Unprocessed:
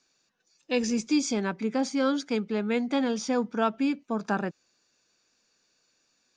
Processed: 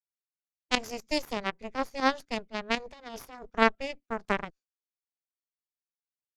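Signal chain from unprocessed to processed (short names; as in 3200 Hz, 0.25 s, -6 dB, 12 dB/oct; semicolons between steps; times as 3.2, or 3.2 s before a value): 2.78–3.47 negative-ratio compressor -30 dBFS, ratio -1; added harmonics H 2 -7 dB, 3 -9 dB, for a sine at -11.5 dBFS; pump 120 bpm, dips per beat 2, -13 dB, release 83 ms; gate with hold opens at -54 dBFS; gain +4 dB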